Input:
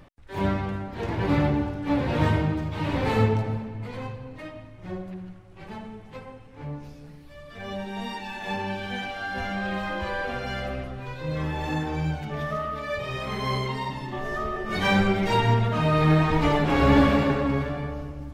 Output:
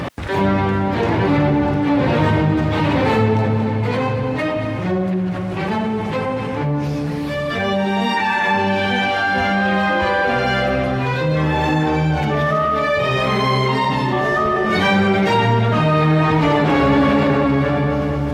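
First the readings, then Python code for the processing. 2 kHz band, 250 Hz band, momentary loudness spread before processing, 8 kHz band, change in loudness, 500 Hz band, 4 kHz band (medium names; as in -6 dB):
+11.0 dB, +9.0 dB, 19 LU, +7.0 dB, +8.5 dB, +10.0 dB, +9.5 dB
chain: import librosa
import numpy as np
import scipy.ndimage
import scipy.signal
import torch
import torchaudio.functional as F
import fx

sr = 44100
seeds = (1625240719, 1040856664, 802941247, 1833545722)

y = scipy.signal.sosfilt(scipy.signal.butter(2, 110.0, 'highpass', fs=sr, output='sos'), x)
y = fx.spec_box(y, sr, start_s=8.17, length_s=0.4, low_hz=850.0, high_hz=2500.0, gain_db=6)
y = fx.high_shelf(y, sr, hz=6300.0, db=-7.5)
y = fx.echo_feedback(y, sr, ms=235, feedback_pct=58, wet_db=-16.5)
y = fx.env_flatten(y, sr, amount_pct=70)
y = F.gain(torch.from_numpy(y), 2.5).numpy()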